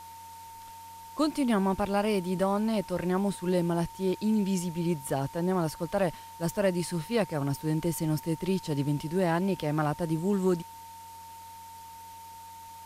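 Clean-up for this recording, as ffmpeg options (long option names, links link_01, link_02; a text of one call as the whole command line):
ffmpeg -i in.wav -af "adeclick=threshold=4,bandreject=frequency=91.4:width_type=h:width=4,bandreject=frequency=182.8:width_type=h:width=4,bandreject=frequency=274.2:width_type=h:width=4,bandreject=frequency=365.6:width_type=h:width=4,bandreject=frequency=910:width=30,afwtdn=0.0022" out.wav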